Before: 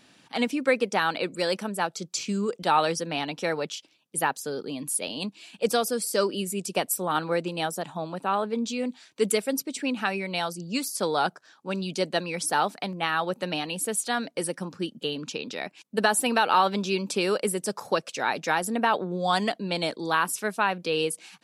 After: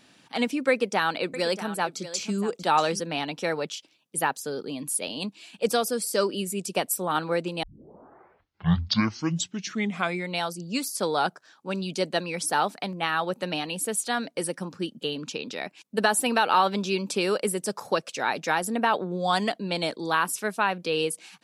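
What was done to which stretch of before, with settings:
0.7–3 echo 0.636 s -13.5 dB
7.63 tape start 2.76 s

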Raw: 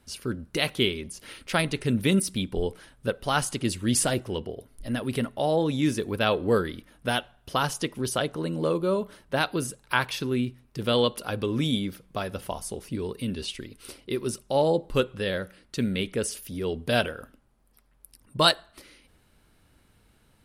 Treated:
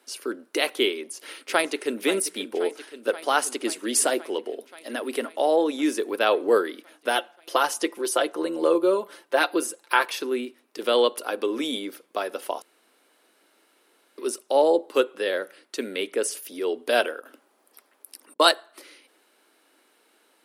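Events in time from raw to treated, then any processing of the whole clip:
0.95–2.01 echo throw 0.53 s, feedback 75%, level -13 dB
7.15–10.1 comb 5.8 ms, depth 51%
12.62–14.18 room tone
17.2–18.4 negative-ratio compressor -51 dBFS
whole clip: dynamic EQ 3700 Hz, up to -4 dB, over -44 dBFS, Q 0.9; steep high-pass 300 Hz 36 dB/oct; gain +4 dB

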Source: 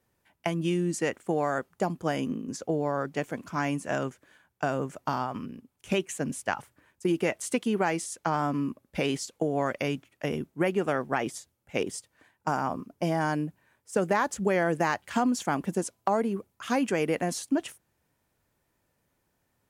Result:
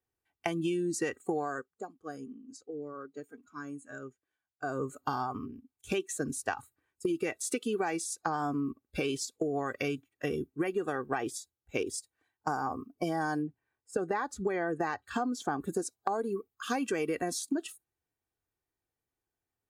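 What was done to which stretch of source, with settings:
1.38–4.9 dip -11.5 dB, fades 0.32 s
13.42–15.6 high shelf 4900 Hz -10 dB
whole clip: spectral noise reduction 17 dB; comb 2.6 ms, depth 51%; compressor, threshold -28 dBFS

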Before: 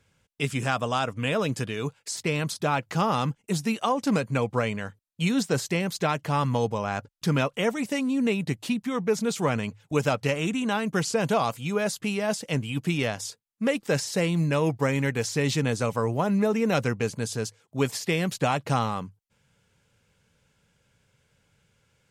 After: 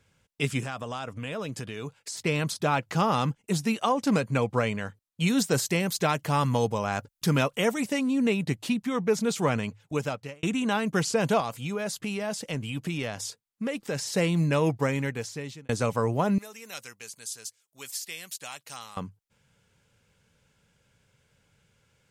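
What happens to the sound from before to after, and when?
0.6–2.24 compressor 2.5:1, threshold -34 dBFS
5.28–7.85 high shelf 8000 Hz +10 dB
9.33–10.43 fade out equal-power
11.4–14.06 compressor 2.5:1, threshold -29 dBFS
14.69–15.69 fade out
16.38–18.97 pre-emphasis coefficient 0.97

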